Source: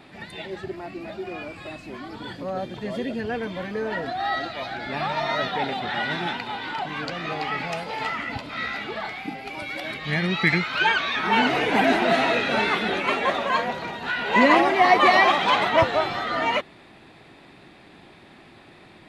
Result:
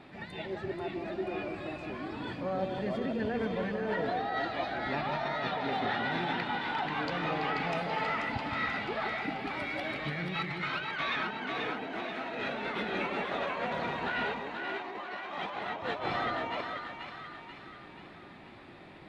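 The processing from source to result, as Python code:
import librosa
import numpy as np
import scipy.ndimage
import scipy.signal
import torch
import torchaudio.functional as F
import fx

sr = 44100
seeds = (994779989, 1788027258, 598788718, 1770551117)

p1 = fx.lowpass(x, sr, hz=2700.0, slope=6)
p2 = fx.over_compress(p1, sr, threshold_db=-29.0, ratio=-1.0)
p3 = p2 + fx.echo_split(p2, sr, split_hz=890.0, low_ms=164, high_ms=485, feedback_pct=52, wet_db=-5.0, dry=0)
y = F.gain(torch.from_numpy(p3), -7.0).numpy()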